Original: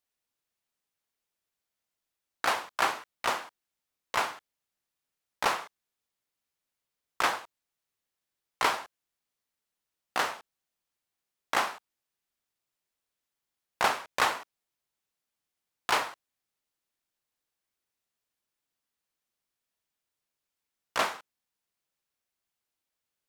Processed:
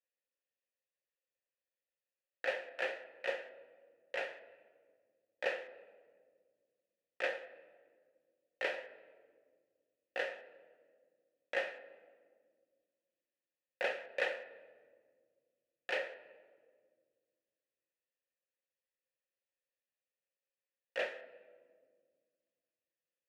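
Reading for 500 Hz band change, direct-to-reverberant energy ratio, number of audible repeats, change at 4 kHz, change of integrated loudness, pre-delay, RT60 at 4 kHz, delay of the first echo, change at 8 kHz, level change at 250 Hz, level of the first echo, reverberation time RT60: −1.5 dB, 9.0 dB, no echo audible, −13.0 dB, −9.5 dB, 5 ms, 1.1 s, no echo audible, −24.0 dB, −13.0 dB, no echo audible, 1.8 s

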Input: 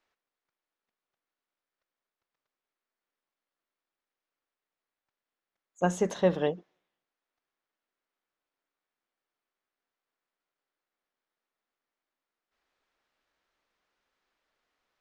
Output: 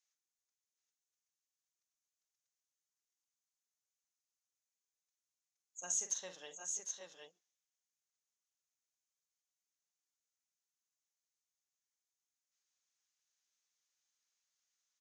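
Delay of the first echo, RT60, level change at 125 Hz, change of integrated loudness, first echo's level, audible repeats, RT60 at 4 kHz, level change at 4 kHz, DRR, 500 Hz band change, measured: 45 ms, no reverb audible, below −35 dB, −11.0 dB, −9.5 dB, 2, no reverb audible, −5.5 dB, no reverb audible, −25.5 dB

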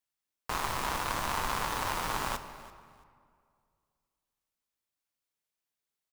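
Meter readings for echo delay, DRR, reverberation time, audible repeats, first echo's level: 336 ms, 9.5 dB, 2.1 s, 2, −19.0 dB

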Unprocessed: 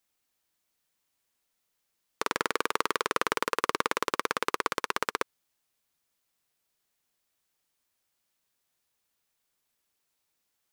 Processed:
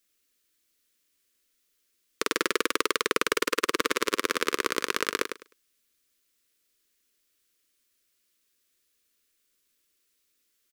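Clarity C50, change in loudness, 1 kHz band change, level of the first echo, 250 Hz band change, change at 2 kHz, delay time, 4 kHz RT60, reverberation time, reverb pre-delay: no reverb audible, +3.0 dB, −1.5 dB, −8.0 dB, +5.5 dB, +3.5 dB, 103 ms, no reverb audible, no reverb audible, no reverb audible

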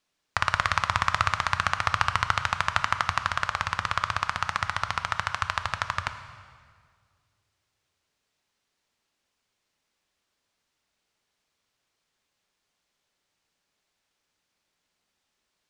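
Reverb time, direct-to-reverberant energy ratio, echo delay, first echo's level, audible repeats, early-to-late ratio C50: 1.9 s, 9.0 dB, no echo audible, no echo audible, no echo audible, 10.5 dB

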